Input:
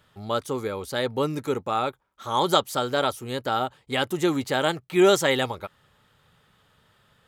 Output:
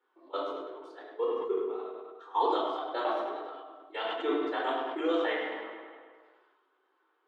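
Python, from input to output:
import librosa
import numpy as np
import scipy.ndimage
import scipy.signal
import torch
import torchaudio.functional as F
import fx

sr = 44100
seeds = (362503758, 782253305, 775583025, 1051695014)

p1 = fx.dereverb_blind(x, sr, rt60_s=1.1)
p2 = fx.dynamic_eq(p1, sr, hz=3700.0, q=1.3, threshold_db=-43.0, ratio=4.0, max_db=6)
p3 = fx.level_steps(p2, sr, step_db=23)
p4 = fx.pitch_keep_formants(p3, sr, semitones=-3.0)
p5 = scipy.signal.sosfilt(scipy.signal.cheby1(6, 6, 270.0, 'highpass', fs=sr, output='sos'), p4)
p6 = fx.spacing_loss(p5, sr, db_at_10k=30)
p7 = p6 + fx.echo_tape(p6, sr, ms=103, feedback_pct=63, wet_db=-6.5, lp_hz=4800.0, drive_db=19.0, wow_cents=6, dry=0)
p8 = fx.room_shoebox(p7, sr, seeds[0], volume_m3=1000.0, walls='furnished', distance_m=4.3)
p9 = fx.sustainer(p8, sr, db_per_s=32.0)
y = F.gain(torch.from_numpy(p9), -3.5).numpy()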